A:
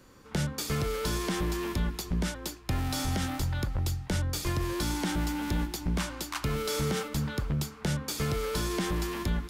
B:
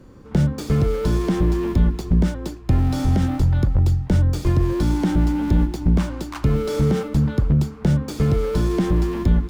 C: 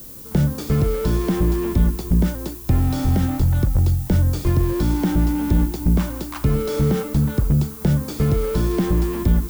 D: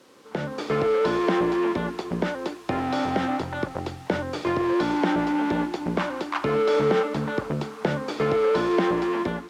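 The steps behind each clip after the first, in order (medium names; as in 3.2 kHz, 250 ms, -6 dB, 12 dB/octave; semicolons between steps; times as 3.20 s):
median filter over 3 samples; tilt shelf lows +8 dB, about 780 Hz; trim +5.5 dB
added noise violet -39 dBFS
level rider; band-pass 470–2900 Hz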